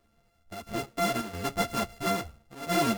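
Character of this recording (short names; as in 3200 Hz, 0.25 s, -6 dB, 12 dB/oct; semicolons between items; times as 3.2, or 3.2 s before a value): a buzz of ramps at a fixed pitch in blocks of 64 samples; chopped level 1.5 Hz, depth 60%, duty 80%; a shimmering, thickened sound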